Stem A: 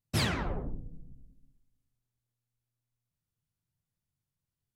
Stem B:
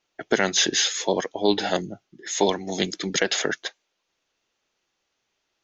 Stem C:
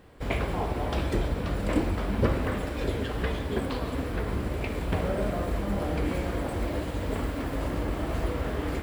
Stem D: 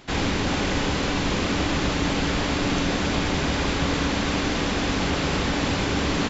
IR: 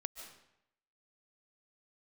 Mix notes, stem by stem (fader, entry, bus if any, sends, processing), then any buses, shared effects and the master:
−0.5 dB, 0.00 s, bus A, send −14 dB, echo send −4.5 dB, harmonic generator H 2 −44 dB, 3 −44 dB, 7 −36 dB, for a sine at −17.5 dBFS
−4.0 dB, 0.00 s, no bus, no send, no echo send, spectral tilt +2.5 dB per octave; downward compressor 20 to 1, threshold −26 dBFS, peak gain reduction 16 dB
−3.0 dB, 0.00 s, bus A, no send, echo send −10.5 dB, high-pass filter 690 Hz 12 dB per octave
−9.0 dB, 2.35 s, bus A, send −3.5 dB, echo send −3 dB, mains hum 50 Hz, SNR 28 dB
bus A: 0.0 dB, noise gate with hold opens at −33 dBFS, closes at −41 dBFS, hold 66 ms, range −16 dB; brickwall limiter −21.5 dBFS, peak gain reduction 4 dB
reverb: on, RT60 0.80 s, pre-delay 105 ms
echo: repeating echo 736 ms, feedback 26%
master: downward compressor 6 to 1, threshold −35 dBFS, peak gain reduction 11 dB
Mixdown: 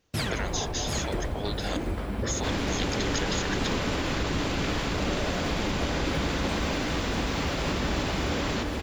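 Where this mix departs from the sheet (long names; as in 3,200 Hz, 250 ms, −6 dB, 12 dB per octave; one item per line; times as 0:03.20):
stem C: missing high-pass filter 690 Hz 12 dB per octave
master: missing downward compressor 6 to 1, threshold −35 dBFS, peak gain reduction 11 dB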